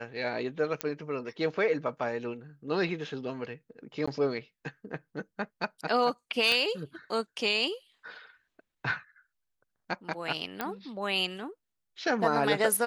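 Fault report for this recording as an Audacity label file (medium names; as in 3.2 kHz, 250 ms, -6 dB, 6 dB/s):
0.810000	0.810000	pop -13 dBFS
4.060000	4.080000	dropout 15 ms
6.520000	6.520000	pop -14 dBFS
10.610000	10.610000	pop -16 dBFS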